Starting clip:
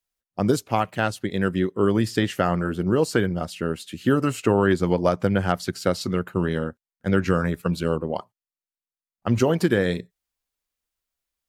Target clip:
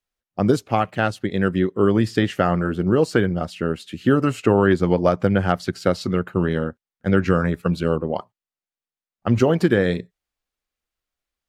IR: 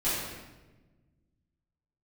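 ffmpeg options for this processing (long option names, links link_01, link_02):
-af "highshelf=frequency=6000:gain=-11.5,bandreject=frequency=970:width=18,volume=3dB"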